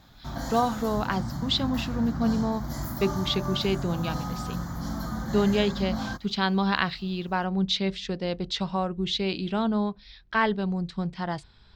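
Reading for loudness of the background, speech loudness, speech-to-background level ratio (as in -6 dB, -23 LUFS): -33.5 LUFS, -28.0 LUFS, 5.5 dB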